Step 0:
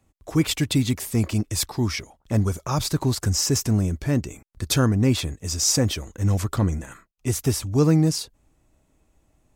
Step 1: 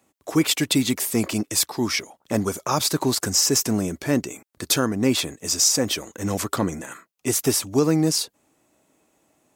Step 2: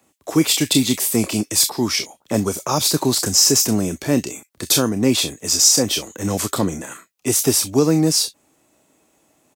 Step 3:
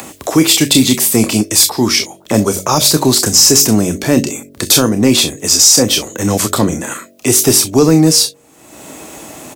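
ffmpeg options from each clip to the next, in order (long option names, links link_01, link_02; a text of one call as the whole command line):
ffmpeg -i in.wav -af "highpass=250,highshelf=frequency=9600:gain=4,alimiter=limit=-12.5dB:level=0:latency=1:release=323,volume=5dB" out.wav
ffmpeg -i in.wav -filter_complex "[0:a]acrossover=split=170|1300|2300[link_01][link_02][link_03][link_04];[link_03]acompressor=threshold=-47dB:ratio=6[link_05];[link_04]aecho=1:1:29|44|64:0.708|0.355|0.188[link_06];[link_01][link_02][link_05][link_06]amix=inputs=4:normalize=0,volume=3.5dB" out.wav
ffmpeg -i in.wav -af "bandreject=frequency=47.06:width_type=h:width=4,bandreject=frequency=94.12:width_type=h:width=4,bandreject=frequency=141.18:width_type=h:width=4,bandreject=frequency=188.24:width_type=h:width=4,bandreject=frequency=235.3:width_type=h:width=4,bandreject=frequency=282.36:width_type=h:width=4,bandreject=frequency=329.42:width_type=h:width=4,bandreject=frequency=376.48:width_type=h:width=4,bandreject=frequency=423.54:width_type=h:width=4,bandreject=frequency=470.6:width_type=h:width=4,bandreject=frequency=517.66:width_type=h:width=4,bandreject=frequency=564.72:width_type=h:width=4,bandreject=frequency=611.78:width_type=h:width=4,bandreject=frequency=658.84:width_type=h:width=4,acompressor=mode=upward:threshold=-22dB:ratio=2.5,apsyclip=9.5dB,volume=-1.5dB" out.wav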